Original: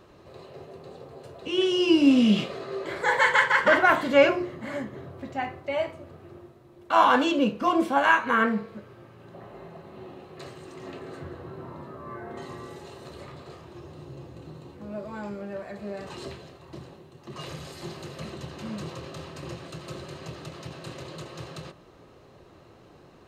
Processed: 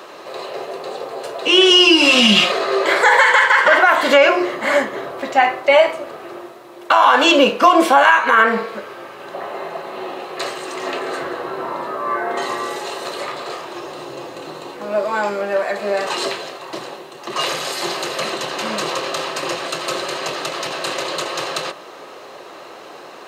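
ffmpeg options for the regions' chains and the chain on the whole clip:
-filter_complex "[0:a]asettb=1/sr,asplit=3[a][b][c];[a]atrim=end=1.704[d];[b]atrim=start=1.7:end=2.52,asetpts=PTS-STARTPTS,afade=t=in:d=0.004:c=qsin,afade=t=out:st=0.816:d=0.004:c=qsin,equalizer=f=460:t=o:w=0.78:g=-10.5,aecho=1:1:5.6:0.98,atrim=end_sample=36162[e];[c]atrim=start=2.516[f];[d][e]acrossfade=d=0.004:c1=hsin:c2=qsin[g];[g][f]acrossfade=d=0.004:c1=qsin:c2=hsin,highpass=550,acompressor=threshold=-26dB:ratio=6,alimiter=level_in=21.5dB:limit=-1dB:release=50:level=0:latency=1,volume=-1dB"

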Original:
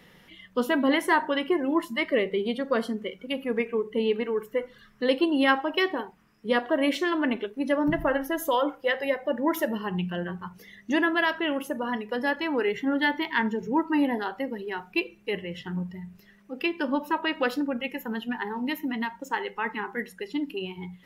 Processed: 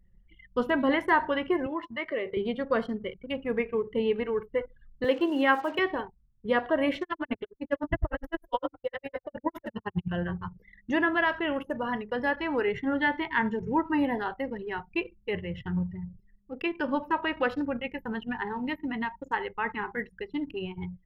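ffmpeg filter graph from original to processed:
-filter_complex "[0:a]asettb=1/sr,asplit=3[a][b][c];[a]atrim=end=1.664[d];[b]atrim=start=1.66:end=2.37,asetpts=PTS-STARTPTS,afade=t=in:d=0.004:c=qsin,afade=t=out:st=0.706:d=0.004:c=qsin,acompressor=threshold=-28dB:ratio=2:attack=3.2:release=140:knee=1:detection=peak,highpass=300,lowpass=4.3k,asplit=2[e][f];[f]adelay=13,volume=-14dB[g];[e][g]amix=inputs=2:normalize=0,atrim=end_sample=31311[h];[c]atrim=start=2.366[i];[d][h]acrossfade=d=0.004:c1=hsin:c2=qsin[j];[j][i]acrossfade=d=0.004:c1=qsin:c2=hsin,asettb=1/sr,asplit=3[k][l][m];[k]atrim=end=5.044[n];[l]atrim=start=5.04:end=5.79,asetpts=PTS-STARTPTS,afade=t=in:d=0.004:c=qsin,afade=t=out:st=0.746:d=0.004:c=qsin,bandreject=f=60:t=h:w=6,bandreject=f=120:t=h:w=6,bandreject=f=180:t=h:w=6,bandreject=f=240:t=h:w=6,bandreject=f=300:t=h:w=6,bandreject=f=360:t=h:w=6,bandreject=f=420:t=h:w=6,bandreject=f=480:t=h:w=6,acrusher=bits=8:dc=4:mix=0:aa=0.000001,highpass=f=210:w=0.5412,highpass=f=210:w=1.3066[o];[m]atrim=start=5.786[p];[n][o]acrossfade=d=0.004:c1=hsin:c2=qsin[q];[q][p]acrossfade=d=0.004:c1=qsin:c2=hsin,asettb=1/sr,asplit=3[r][s][t];[r]atrim=end=7.024[u];[s]atrim=start=7.02:end=10.08,asetpts=PTS-STARTPTS,afade=t=in:d=0.004:c=qsin,afade=t=out:st=3.056:d=0.004:c=qsin,asplit=2[v][w];[w]adelay=45,volume=-8dB[x];[v][x]amix=inputs=2:normalize=0,atrim=end_sample=134946,aeval=exprs='val(0)*pow(10,-38*(0.5-0.5*cos(2*PI*9.8*n/s))/20)':c=same[y];[t]atrim=start=10.076[z];[u][y]acrossfade=d=0.004:c1=hsin:c2=qsin[aa];[aa][z]acrossfade=d=0.004:c1=qsin:c2=hsin,acrossover=split=2700[ab][ac];[ac]acompressor=threshold=-51dB:ratio=4:attack=1:release=60[ad];[ab][ad]amix=inputs=2:normalize=0,anlmdn=0.158,lowshelf=f=150:t=q:w=1.5:g=13.5"

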